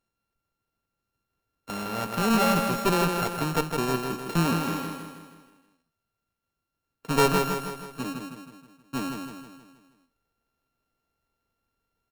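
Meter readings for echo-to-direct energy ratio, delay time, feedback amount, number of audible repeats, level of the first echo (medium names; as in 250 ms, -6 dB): -4.0 dB, 159 ms, 50%, 5, -5.0 dB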